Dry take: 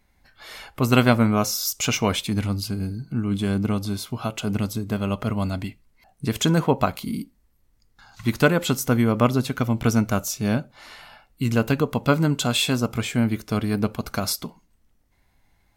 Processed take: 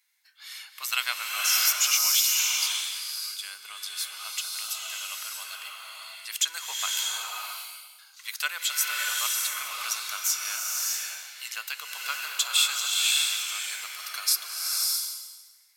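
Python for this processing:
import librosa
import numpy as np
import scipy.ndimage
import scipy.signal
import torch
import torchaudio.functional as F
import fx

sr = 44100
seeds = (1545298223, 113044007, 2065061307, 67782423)

y = scipy.signal.sosfilt(scipy.signal.bessel(4, 1700.0, 'highpass', norm='mag', fs=sr, output='sos'), x)
y = fx.high_shelf(y, sr, hz=2200.0, db=11.0)
y = fx.rev_bloom(y, sr, seeds[0], attack_ms=610, drr_db=-1.5)
y = F.gain(torch.from_numpy(y), -7.0).numpy()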